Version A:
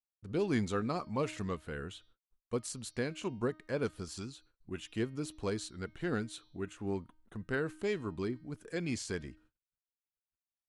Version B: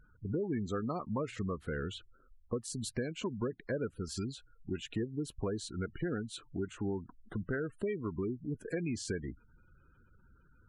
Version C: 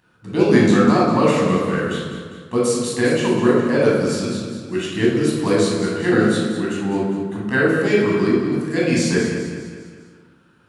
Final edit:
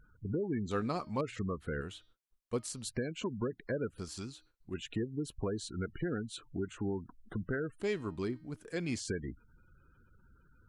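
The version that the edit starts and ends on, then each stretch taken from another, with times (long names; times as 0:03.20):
B
0:00.71–0:01.21: punch in from A
0:01.81–0:02.85: punch in from A
0:03.98–0:04.74: punch in from A
0:07.80–0:09.00: punch in from A
not used: C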